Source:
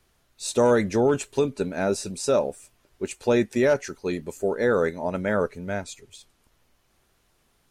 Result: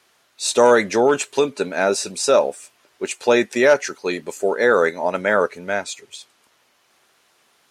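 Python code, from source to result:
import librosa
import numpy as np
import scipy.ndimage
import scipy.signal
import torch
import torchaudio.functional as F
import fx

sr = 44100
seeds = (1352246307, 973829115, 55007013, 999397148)

y = fx.weighting(x, sr, curve='A')
y = F.gain(torch.from_numpy(y), 9.0).numpy()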